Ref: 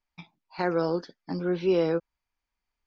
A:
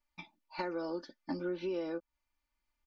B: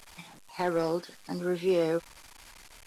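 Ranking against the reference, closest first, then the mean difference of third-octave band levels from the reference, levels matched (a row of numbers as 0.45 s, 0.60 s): A, B; 3.5 dB, 5.5 dB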